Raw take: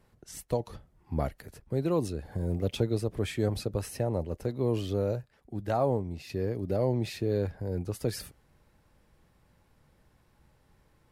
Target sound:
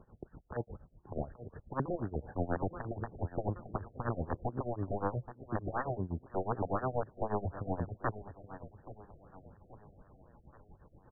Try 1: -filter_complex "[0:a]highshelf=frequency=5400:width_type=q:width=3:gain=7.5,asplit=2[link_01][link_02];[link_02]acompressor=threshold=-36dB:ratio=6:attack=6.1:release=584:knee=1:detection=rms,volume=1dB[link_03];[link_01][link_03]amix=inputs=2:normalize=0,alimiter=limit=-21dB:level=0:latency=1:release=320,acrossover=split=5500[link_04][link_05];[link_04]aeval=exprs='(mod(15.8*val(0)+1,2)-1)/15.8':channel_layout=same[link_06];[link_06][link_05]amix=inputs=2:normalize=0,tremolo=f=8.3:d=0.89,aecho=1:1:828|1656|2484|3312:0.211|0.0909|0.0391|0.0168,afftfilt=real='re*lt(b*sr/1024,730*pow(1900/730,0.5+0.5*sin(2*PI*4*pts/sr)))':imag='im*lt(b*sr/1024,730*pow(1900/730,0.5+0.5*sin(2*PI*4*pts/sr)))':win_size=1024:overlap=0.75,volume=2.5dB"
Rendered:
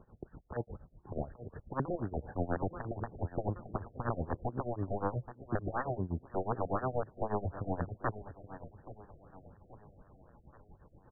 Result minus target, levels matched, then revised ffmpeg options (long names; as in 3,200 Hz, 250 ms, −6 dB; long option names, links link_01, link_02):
downward compressor: peak gain reduction −8 dB
-filter_complex "[0:a]highshelf=frequency=5400:width_type=q:width=3:gain=7.5,asplit=2[link_01][link_02];[link_02]acompressor=threshold=-45.5dB:ratio=6:attack=6.1:release=584:knee=1:detection=rms,volume=1dB[link_03];[link_01][link_03]amix=inputs=2:normalize=0,alimiter=limit=-21dB:level=0:latency=1:release=320,acrossover=split=5500[link_04][link_05];[link_04]aeval=exprs='(mod(15.8*val(0)+1,2)-1)/15.8':channel_layout=same[link_06];[link_06][link_05]amix=inputs=2:normalize=0,tremolo=f=8.3:d=0.89,aecho=1:1:828|1656|2484|3312:0.211|0.0909|0.0391|0.0168,afftfilt=real='re*lt(b*sr/1024,730*pow(1900/730,0.5+0.5*sin(2*PI*4*pts/sr)))':imag='im*lt(b*sr/1024,730*pow(1900/730,0.5+0.5*sin(2*PI*4*pts/sr)))':win_size=1024:overlap=0.75,volume=2.5dB"